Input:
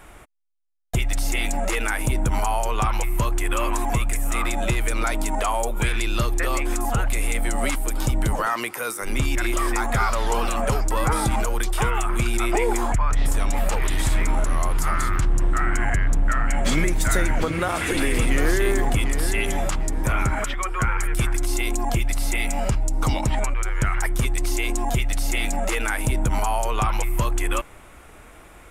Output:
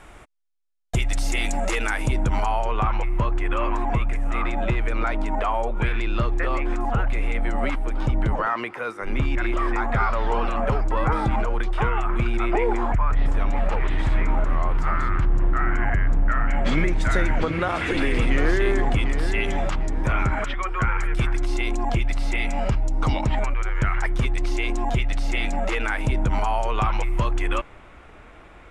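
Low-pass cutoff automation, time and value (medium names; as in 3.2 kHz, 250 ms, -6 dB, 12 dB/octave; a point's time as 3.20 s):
1.68 s 7.8 kHz
2.47 s 3.8 kHz
2.81 s 2.3 kHz
16.21 s 2.3 kHz
17.16 s 3.8 kHz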